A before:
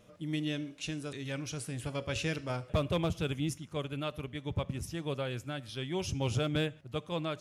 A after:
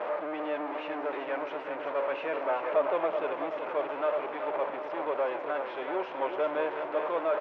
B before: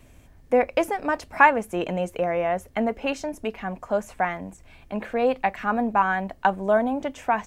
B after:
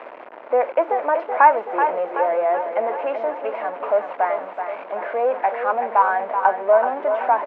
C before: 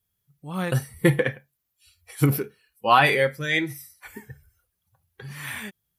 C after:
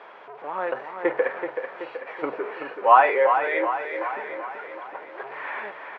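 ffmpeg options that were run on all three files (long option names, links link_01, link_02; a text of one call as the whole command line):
ffmpeg -i in.wav -af "aeval=exprs='val(0)+0.5*0.0531*sgn(val(0))':channel_layout=same,highpass=frequency=400:width=0.5412,highpass=frequency=400:width=1.3066,equalizer=frequency=620:width_type=q:width=4:gain=5,equalizer=frequency=940:width_type=q:width=4:gain=6,equalizer=frequency=1800:width_type=q:width=4:gain=-3,lowpass=frequency=2000:width=0.5412,lowpass=frequency=2000:width=1.3066,aecho=1:1:379|758|1137|1516|1895|2274|2653:0.422|0.24|0.137|0.0781|0.0445|0.0254|0.0145,volume=-1dB" out.wav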